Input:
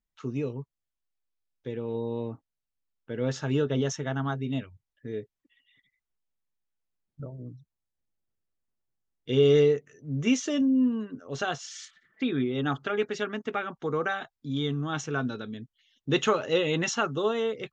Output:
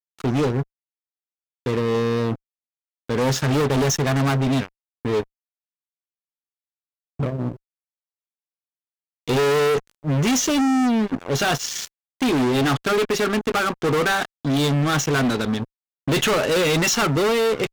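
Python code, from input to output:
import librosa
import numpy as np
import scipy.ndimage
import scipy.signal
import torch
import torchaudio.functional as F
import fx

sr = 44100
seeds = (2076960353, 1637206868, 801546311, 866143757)

y = fx.peak_eq(x, sr, hz=980.0, db=-12.0, octaves=0.6, at=(0.45, 3.15))
y = fx.fuzz(y, sr, gain_db=36.0, gate_db=-45.0)
y = y * 10.0 ** (-4.0 / 20.0)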